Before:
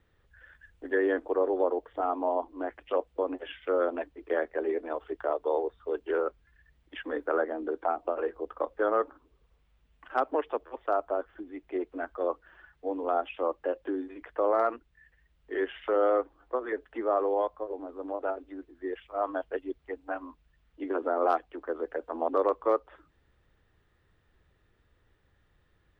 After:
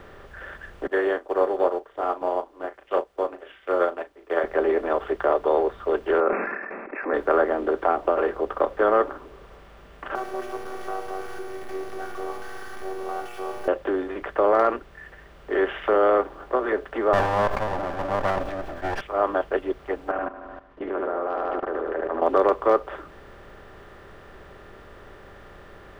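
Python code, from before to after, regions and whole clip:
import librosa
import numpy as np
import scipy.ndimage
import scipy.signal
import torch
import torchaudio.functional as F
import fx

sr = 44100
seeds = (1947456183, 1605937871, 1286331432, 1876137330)

y = fx.chain(x, sr, fx.bass_treble(bass_db=-12, treble_db=11),
    fx.doubler(ms=36.0, db=-9.0),
    fx.upward_expand(threshold_db=-40.0, expansion=2.5), at=(0.87, 4.44))
y = fx.chain(y, sr, fx.brickwall_bandpass(low_hz=200.0, high_hz=2700.0),
    fx.sustainer(db_per_s=50.0), at=(6.2, 7.14))
y = fx.chain(y, sr, fx.zero_step(step_db=-31.5),
    fx.robotise(hz=379.0),
    fx.comb_fb(f0_hz=120.0, decay_s=0.99, harmonics='all', damping=0.0, mix_pct=90), at=(10.15, 13.68))
y = fx.chain(y, sr, fx.lower_of_two(delay_ms=1.2),
    fx.sustainer(db_per_s=64.0), at=(17.13, 19.01))
y = fx.chain(y, sr, fx.lowpass(hz=2300.0, slope=12),
    fx.echo_feedback(ms=75, feedback_pct=57, wet_db=-6),
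    fx.level_steps(step_db=20), at=(20.11, 22.22))
y = fx.bin_compress(y, sr, power=0.6)
y = y + 0.33 * np.pad(y, (int(5.1 * sr / 1000.0), 0))[:len(y)]
y = F.gain(torch.from_numpy(y), 4.0).numpy()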